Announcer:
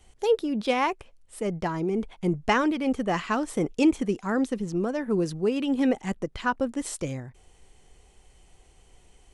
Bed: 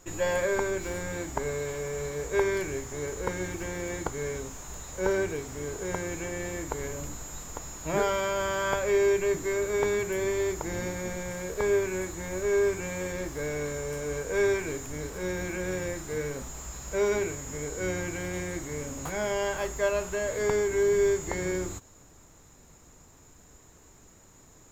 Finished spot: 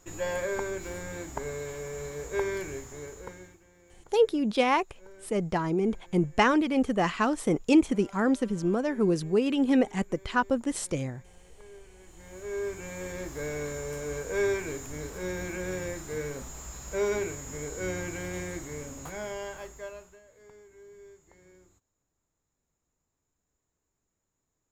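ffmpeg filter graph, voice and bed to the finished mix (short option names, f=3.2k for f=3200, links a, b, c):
-filter_complex "[0:a]adelay=3900,volume=0.5dB[a];[1:a]volume=19.5dB,afade=t=out:st=2.7:d=0.91:silence=0.0841395,afade=t=in:st=11.98:d=1.44:silence=0.0668344,afade=t=out:st=18.44:d=1.78:silence=0.0530884[b];[a][b]amix=inputs=2:normalize=0"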